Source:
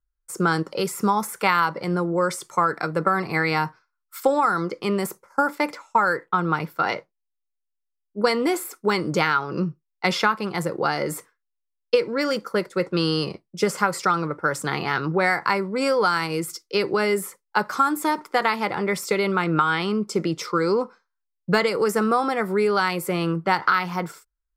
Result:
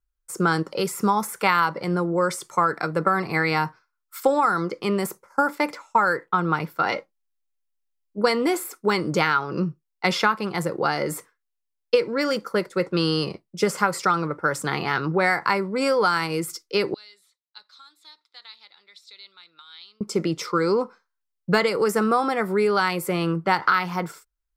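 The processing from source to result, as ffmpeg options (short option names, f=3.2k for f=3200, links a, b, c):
-filter_complex "[0:a]asettb=1/sr,asplit=3[a][b][c];[a]atrim=end=6.924[d];[b]atrim=start=6.92:end=8.18,asetpts=PTS-STARTPTS,afade=t=in:d=0.004:c=qsin,afade=t=out:st=1.256:d=0.004:c=qsin,aecho=1:1:3.7:0.63,atrim=end_sample=55566[e];[c]atrim=start=8.176[f];[d][e]acrossfade=d=0.004:c1=hsin:c2=qsin[g];[g][f]acrossfade=d=0.004:c1=qsin:c2=hsin,asettb=1/sr,asplit=3[h][i][j];[h]atrim=end=16.944[k];[i]atrim=start=16.94:end=20.01,asetpts=PTS-STARTPTS,afade=t=in:d=0.004:c=qsin,afade=t=out:st=3.066:d=0.004:c=qsin,bandpass=f=3.9k:t=q:w=13[l];[j]atrim=start=20.006[m];[k][l]acrossfade=d=0.004:c1=hsin:c2=qsin[n];[n][m]acrossfade=d=0.004:c1=qsin:c2=hsin"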